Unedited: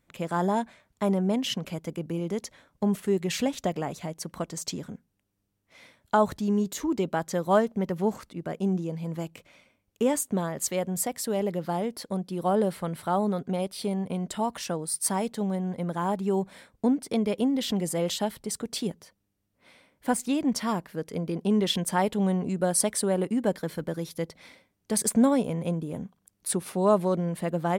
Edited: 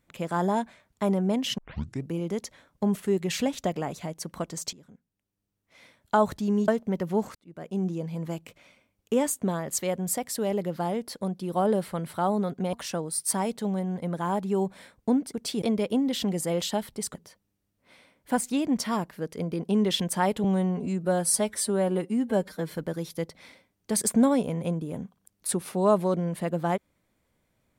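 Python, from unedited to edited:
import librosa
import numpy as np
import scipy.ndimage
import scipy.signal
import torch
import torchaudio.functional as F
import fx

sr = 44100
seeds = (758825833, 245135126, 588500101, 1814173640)

y = fx.edit(x, sr, fx.tape_start(start_s=1.58, length_s=0.51),
    fx.fade_in_from(start_s=4.73, length_s=1.42, floor_db=-19.5),
    fx.cut(start_s=6.68, length_s=0.89),
    fx.fade_in_span(start_s=8.24, length_s=0.58),
    fx.cut(start_s=13.62, length_s=0.87),
    fx.move(start_s=18.62, length_s=0.28, to_s=17.1),
    fx.stretch_span(start_s=22.2, length_s=1.51, factor=1.5), tone=tone)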